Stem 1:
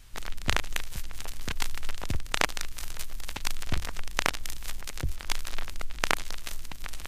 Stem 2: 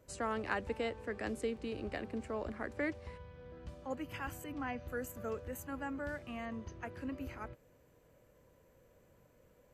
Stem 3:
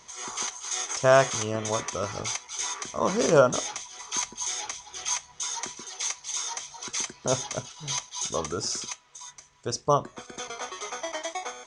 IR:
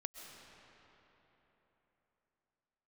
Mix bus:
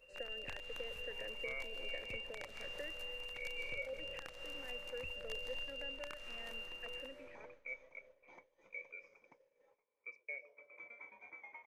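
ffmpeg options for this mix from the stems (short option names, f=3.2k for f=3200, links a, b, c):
-filter_complex "[0:a]volume=-12.5dB,asplit=2[a][b];[b]volume=-7dB[c];[1:a]acompressor=threshold=-40dB:ratio=6,asplit=3[d][e][f];[d]bandpass=f=530:t=q:w=8,volume=0dB[g];[e]bandpass=f=1.84k:t=q:w=8,volume=-6dB[h];[f]bandpass=f=2.48k:t=q:w=8,volume=-9dB[i];[g][h][i]amix=inputs=3:normalize=0,volume=2.5dB,asplit=2[j][k];[k]volume=-10dB[l];[2:a]asplit=3[m][n][o];[m]bandpass=f=530:t=q:w=8,volume=0dB[p];[n]bandpass=f=1.84k:t=q:w=8,volume=-6dB[q];[o]bandpass=f=2.48k:t=q:w=8,volume=-9dB[r];[p][q][r]amix=inputs=3:normalize=0,lowshelf=f=250:t=q:w=1.5:g=-9,adelay=400,volume=-5.5dB,asplit=2[s][t];[t]volume=-17.5dB[u];[a][s]amix=inputs=2:normalize=0,lowpass=f=2.4k:t=q:w=0.5098,lowpass=f=2.4k:t=q:w=0.6013,lowpass=f=2.4k:t=q:w=0.9,lowpass=f=2.4k:t=q:w=2.563,afreqshift=-2800,acompressor=threshold=-52dB:ratio=2,volume=0dB[v];[3:a]atrim=start_sample=2205[w];[c][l][u]amix=inputs=3:normalize=0[x];[x][w]afir=irnorm=-1:irlink=0[y];[j][v][y]amix=inputs=3:normalize=0,agate=range=-33dB:threshold=-55dB:ratio=3:detection=peak,acompressor=mode=upward:threshold=-57dB:ratio=2.5,alimiter=level_in=7.5dB:limit=-24dB:level=0:latency=1:release=343,volume=-7.5dB"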